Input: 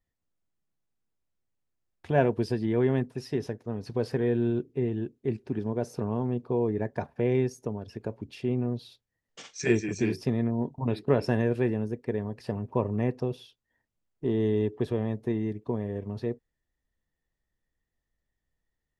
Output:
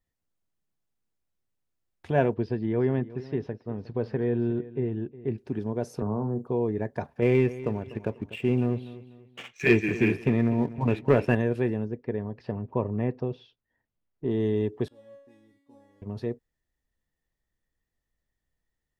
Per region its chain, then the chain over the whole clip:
0:02.34–0:05.38: high-frequency loss of the air 280 metres + single-tap delay 360 ms −17.5 dB
0:06.02–0:06.47: inverse Chebyshev band-stop filter 2,200–4,800 Hz + double-tracking delay 38 ms −11 dB + multiband upward and downward compressor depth 70%
0:07.22–0:11.35: high shelf with overshoot 3,600 Hz −10.5 dB, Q 3 + leveller curve on the samples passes 1 + repeating echo 246 ms, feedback 35%, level −16 dB
0:11.85–0:14.31: high-frequency loss of the air 210 metres + notch filter 7,000 Hz, Q 28
0:14.88–0:16.02: variable-slope delta modulation 64 kbit/s + low-pass filter 3,800 Hz 6 dB per octave + tuned comb filter 280 Hz, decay 0.68 s, mix 100%
whole clip: no processing

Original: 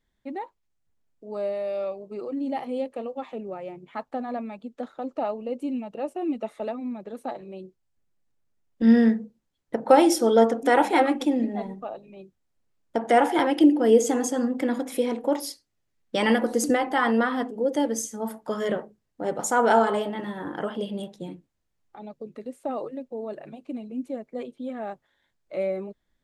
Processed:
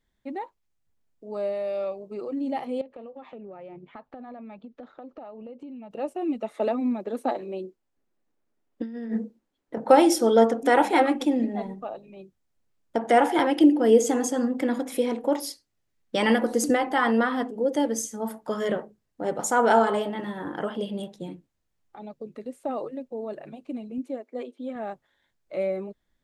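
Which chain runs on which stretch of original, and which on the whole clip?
0:02.81–0:05.91: downward compressor 10 to 1, threshold −37 dBFS + high-frequency loss of the air 170 metres
0:06.54–0:09.78: low shelf with overshoot 190 Hz −9.5 dB, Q 1.5 + compressor whose output falls as the input rises −28 dBFS + one half of a high-frequency compander decoder only
0:23.98–0:24.76: linear-phase brick-wall high-pass 230 Hz + high-shelf EQ 7,900 Hz −5 dB
whole clip: no processing

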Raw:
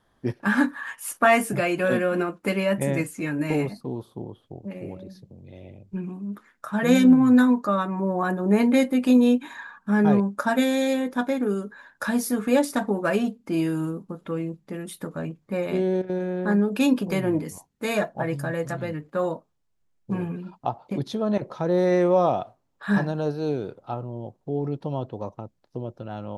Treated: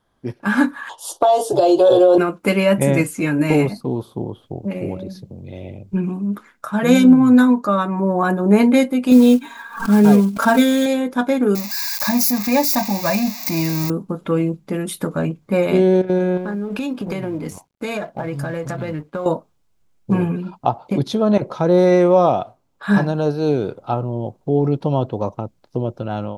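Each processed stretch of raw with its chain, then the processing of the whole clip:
0:00.89–0:02.18: drawn EQ curve 120 Hz 0 dB, 220 Hz −21 dB, 330 Hz +9 dB, 870 Hz +12 dB, 1,400 Hz −10 dB, 2,300 Hz −24 dB, 3,400 Hz +13 dB, 5,500 Hz +6 dB, 13,000 Hz −8 dB + downward compressor 12 to 1, threshold −14 dBFS
0:09.11–0:10.86: one scale factor per block 5 bits + comb filter 4.4 ms, depth 69% + background raised ahead of every attack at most 120 dB per second
0:11.55–0:13.90: spike at every zero crossing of −18.5 dBFS + phaser with its sweep stopped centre 2,100 Hz, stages 8
0:16.37–0:19.26: mu-law and A-law mismatch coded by A + high-shelf EQ 8,100 Hz −10 dB + downward compressor 12 to 1, threshold −31 dBFS
whole clip: notch filter 1,800 Hz, Q 11; automatic gain control gain up to 11.5 dB; level −1 dB

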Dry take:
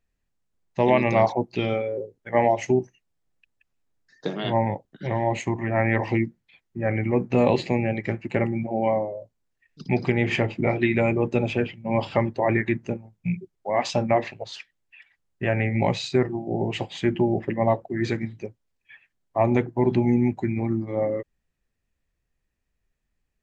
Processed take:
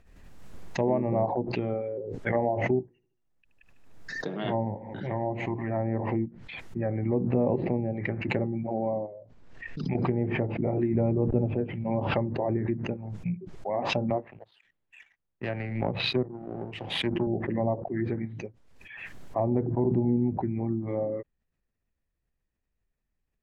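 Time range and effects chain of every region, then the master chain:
0:02.81–0:06.26: mains-hum notches 60/120/180/240/300/360/420/480/540 Hz + repeating echo 75 ms, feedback 56%, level −20.5 dB
0:09.06–0:09.95: downward compressor 2 to 1, threshold −38 dBFS + high-frequency loss of the air 100 metres
0:10.95–0:11.52: hold until the input has moved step −39.5 dBFS + low-shelf EQ 190 Hz +6.5 dB
0:14.10–0:17.27: low-pass filter 3,700 Hz 24 dB per octave + power curve on the samples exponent 1.4 + multiband upward and downward expander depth 40%
whole clip: high-shelf EQ 2,800 Hz −9.5 dB; treble cut that deepens with the level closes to 710 Hz, closed at −19.5 dBFS; background raised ahead of every attack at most 42 dB per second; level −5 dB

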